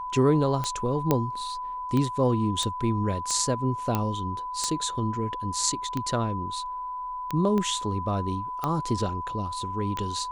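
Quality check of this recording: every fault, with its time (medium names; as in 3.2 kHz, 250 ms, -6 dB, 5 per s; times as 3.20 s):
tick 45 rpm -15 dBFS
whine 1 kHz -31 dBFS
1.11 s: pop -8 dBFS
2.63 s: pop -17 dBFS
3.95 s: pop -11 dBFS
7.58 s: pop -17 dBFS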